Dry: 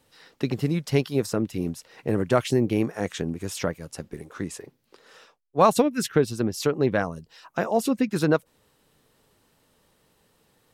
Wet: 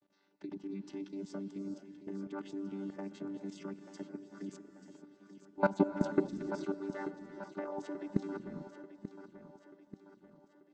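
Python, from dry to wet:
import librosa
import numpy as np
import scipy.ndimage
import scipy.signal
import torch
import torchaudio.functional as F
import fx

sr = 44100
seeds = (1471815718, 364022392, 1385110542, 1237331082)

y = fx.chord_vocoder(x, sr, chord='bare fifth', root=55)
y = fx.steep_highpass(y, sr, hz=320.0, slope=36, at=(6.38, 8.13))
y = fx.hpss(y, sr, part='percussive', gain_db=6)
y = fx.level_steps(y, sr, step_db=17)
y = fx.echo_feedback(y, sr, ms=886, feedback_pct=49, wet_db=-12)
y = fx.rev_gated(y, sr, seeds[0], gate_ms=470, shape='rising', drr_db=9.0)
y = y * librosa.db_to_amplitude(-6.5)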